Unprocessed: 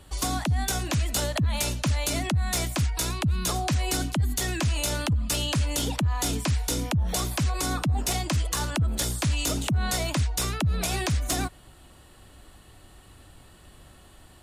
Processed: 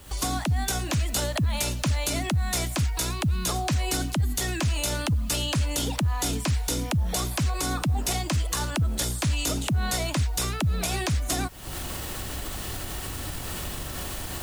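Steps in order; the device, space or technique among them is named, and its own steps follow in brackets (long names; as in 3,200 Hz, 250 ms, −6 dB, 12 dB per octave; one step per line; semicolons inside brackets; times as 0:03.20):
cheap recorder with automatic gain (white noise bed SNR 29 dB; camcorder AGC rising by 65 dB per second)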